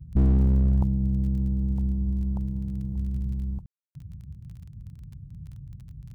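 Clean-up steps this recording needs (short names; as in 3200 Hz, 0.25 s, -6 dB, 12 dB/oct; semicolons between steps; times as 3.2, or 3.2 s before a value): clip repair -14.5 dBFS; de-click; room tone fill 3.66–3.95; noise print and reduce 24 dB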